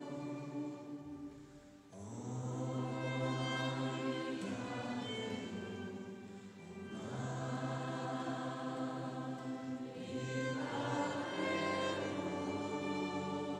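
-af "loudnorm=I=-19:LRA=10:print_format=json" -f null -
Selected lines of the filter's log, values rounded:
"input_i" : "-40.4",
"input_tp" : "-24.6",
"input_lra" : "4.7",
"input_thresh" : "-50.6",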